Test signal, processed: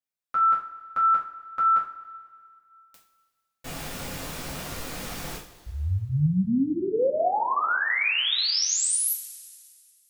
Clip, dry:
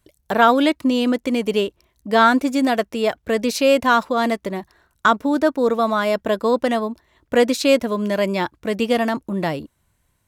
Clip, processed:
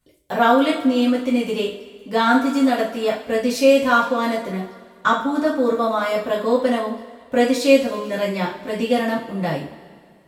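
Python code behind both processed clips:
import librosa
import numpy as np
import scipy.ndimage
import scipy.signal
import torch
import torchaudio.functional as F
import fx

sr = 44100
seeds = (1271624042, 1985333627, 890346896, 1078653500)

y = fx.rev_double_slope(x, sr, seeds[0], early_s=0.37, late_s=2.1, knee_db=-18, drr_db=-6.5)
y = F.gain(torch.from_numpy(y), -8.5).numpy()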